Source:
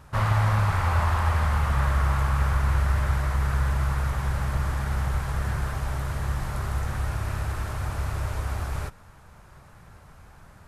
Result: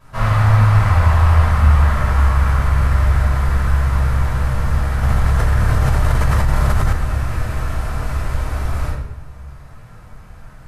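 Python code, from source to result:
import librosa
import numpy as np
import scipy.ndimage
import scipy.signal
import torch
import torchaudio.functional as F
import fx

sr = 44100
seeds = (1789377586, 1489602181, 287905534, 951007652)

y = fx.room_shoebox(x, sr, seeds[0], volume_m3=300.0, walls='mixed', distance_m=5.5)
y = fx.env_flatten(y, sr, amount_pct=100, at=(5.03, 6.93))
y = F.gain(torch.from_numpy(y), -7.0).numpy()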